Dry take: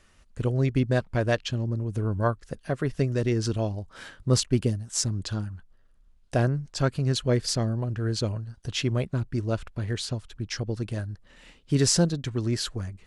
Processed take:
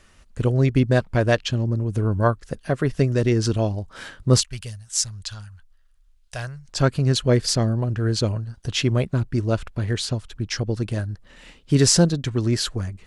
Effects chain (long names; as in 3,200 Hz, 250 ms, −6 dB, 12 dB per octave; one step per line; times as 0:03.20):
0:04.41–0:06.69: guitar amp tone stack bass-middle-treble 10-0-10
level +5.5 dB